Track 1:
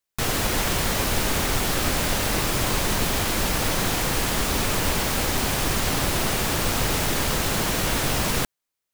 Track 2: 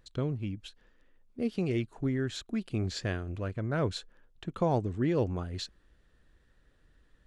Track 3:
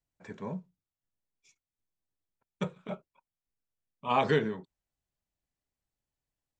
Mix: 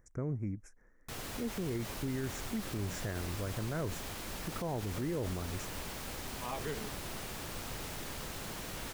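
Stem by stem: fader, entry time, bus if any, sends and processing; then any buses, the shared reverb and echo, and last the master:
-18.5 dB, 0.90 s, no send, dry
-1.5 dB, 0.00 s, no send, elliptic band-stop 2100–5700 Hz
-12.5 dB, 2.35 s, no send, dry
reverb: off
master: limiter -28 dBFS, peak gain reduction 11 dB

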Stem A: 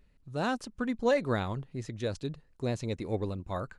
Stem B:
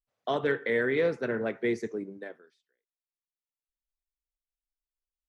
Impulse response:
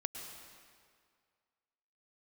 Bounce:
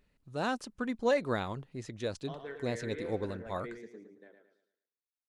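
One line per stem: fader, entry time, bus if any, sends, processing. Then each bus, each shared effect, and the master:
-1.0 dB, 0.00 s, no send, no echo send, low shelf 130 Hz -9.5 dB
-16.5 dB, 2.00 s, no send, echo send -6.5 dB, dry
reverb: off
echo: feedback echo 0.11 s, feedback 37%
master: dry

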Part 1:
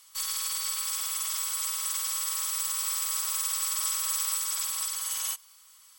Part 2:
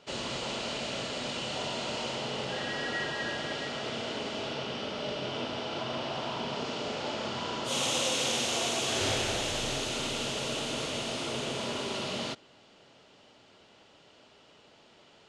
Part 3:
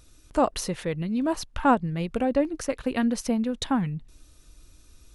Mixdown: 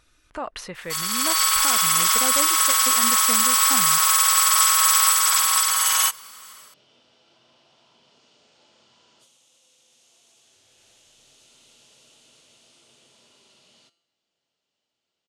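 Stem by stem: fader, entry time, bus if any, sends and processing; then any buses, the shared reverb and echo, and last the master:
+2.0 dB, 0.75 s, no send, bell 1300 Hz +10 dB 2 oct; AGC gain up to 9 dB
-9.0 dB, 1.55 s, no send, pre-emphasis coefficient 0.8; resonator 170 Hz, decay 0.74 s, harmonics all, mix 60%; negative-ratio compressor -48 dBFS, ratio -1
-10.5 dB, 0.00 s, no send, bell 1700 Hz +14.5 dB 2.7 oct; limiter -10.5 dBFS, peak gain reduction 11 dB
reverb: off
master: dry

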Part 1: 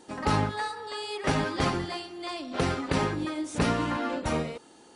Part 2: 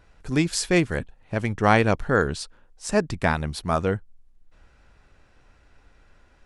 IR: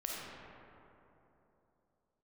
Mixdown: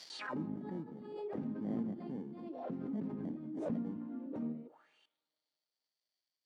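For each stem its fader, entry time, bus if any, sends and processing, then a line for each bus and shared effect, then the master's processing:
-5.5 dB, 0.10 s, send -21.5 dB, vocal rider within 4 dB 0.5 s; high shelf 5300 Hz -4 dB
-11.5 dB, 0.00 s, send -17.5 dB, sample-rate reducer 1300 Hz, jitter 0%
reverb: on, RT60 3.1 s, pre-delay 10 ms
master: HPF 120 Hz 24 dB/oct; auto-wah 230–4900 Hz, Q 4.9, down, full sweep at -32.5 dBFS; backwards sustainer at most 44 dB/s

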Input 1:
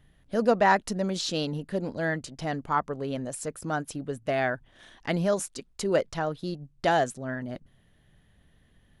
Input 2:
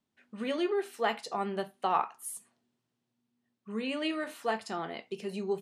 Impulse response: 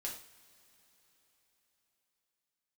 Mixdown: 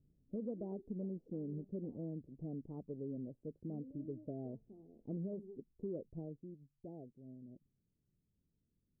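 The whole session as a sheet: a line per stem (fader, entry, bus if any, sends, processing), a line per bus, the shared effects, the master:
6.21 s -7 dB -> 6.48 s -16.5 dB, 0.00 s, no send, low shelf 81 Hz -9.5 dB
-14.0 dB, 0.00 s, no send, compressor, threshold -33 dBFS, peak gain reduction 10.5 dB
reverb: off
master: inverse Chebyshev low-pass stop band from 1400 Hz, stop band 60 dB; compressor 6:1, threshold -38 dBFS, peak gain reduction 8.5 dB

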